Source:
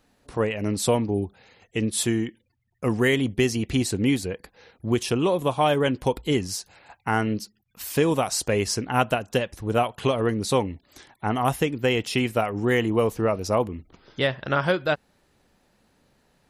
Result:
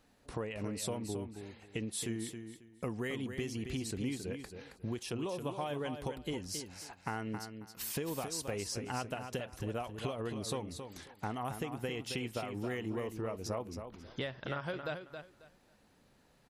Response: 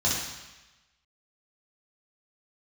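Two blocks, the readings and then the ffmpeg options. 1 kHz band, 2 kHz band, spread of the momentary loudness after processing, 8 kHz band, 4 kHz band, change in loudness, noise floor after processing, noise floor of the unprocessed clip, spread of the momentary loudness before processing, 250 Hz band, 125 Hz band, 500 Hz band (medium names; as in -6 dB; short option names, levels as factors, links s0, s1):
-15.5 dB, -15.5 dB, 8 LU, -11.0 dB, -13.0 dB, -15.0 dB, -67 dBFS, -67 dBFS, 11 LU, -14.5 dB, -13.5 dB, -15.5 dB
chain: -filter_complex "[0:a]acompressor=threshold=0.0251:ratio=6,asplit=2[s0][s1];[s1]aecho=0:1:271|542|813:0.398|0.0876|0.0193[s2];[s0][s2]amix=inputs=2:normalize=0,volume=0.631"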